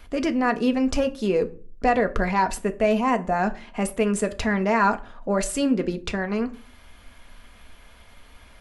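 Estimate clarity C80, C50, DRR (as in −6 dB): 23.5 dB, 18.5 dB, 6.5 dB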